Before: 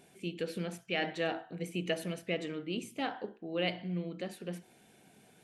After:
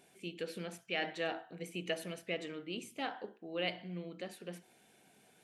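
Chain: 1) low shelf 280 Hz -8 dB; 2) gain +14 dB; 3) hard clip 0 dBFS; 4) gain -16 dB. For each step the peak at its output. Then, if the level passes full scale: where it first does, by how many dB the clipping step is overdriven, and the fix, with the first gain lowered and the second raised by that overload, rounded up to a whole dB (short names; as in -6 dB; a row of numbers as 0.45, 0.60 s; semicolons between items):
-19.5, -5.5, -5.5, -21.5 dBFS; no overload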